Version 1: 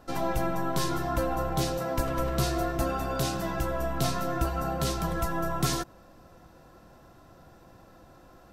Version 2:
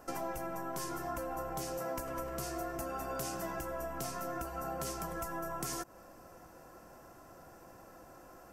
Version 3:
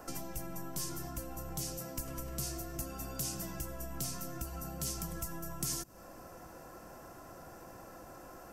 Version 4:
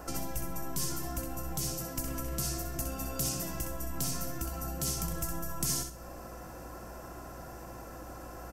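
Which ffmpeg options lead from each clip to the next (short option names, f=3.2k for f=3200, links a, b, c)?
-af "equalizer=f=3.8k:w=2.4:g=-13.5,acompressor=threshold=-35dB:ratio=6,bass=f=250:g=-8,treble=f=4k:g=5,volume=1dB"
-filter_complex "[0:a]acrossover=split=250|3000[a][b][c];[b]acompressor=threshold=-53dB:ratio=10[d];[a][d][c]amix=inputs=3:normalize=0,volume=5dB"
-af "aeval=exprs='val(0)+0.002*(sin(2*PI*60*n/s)+sin(2*PI*2*60*n/s)/2+sin(2*PI*3*60*n/s)/3+sin(2*PI*4*60*n/s)/4+sin(2*PI*5*60*n/s)/5)':c=same,aecho=1:1:64|128|192|256:0.473|0.132|0.0371|0.0104,volume=4dB"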